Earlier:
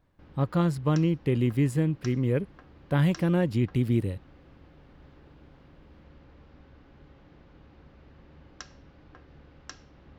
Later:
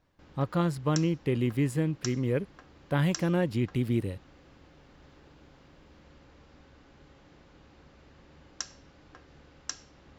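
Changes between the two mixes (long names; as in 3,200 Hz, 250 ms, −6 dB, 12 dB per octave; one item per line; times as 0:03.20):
background: remove high-frequency loss of the air 170 metres
master: add low-shelf EQ 250 Hz −5 dB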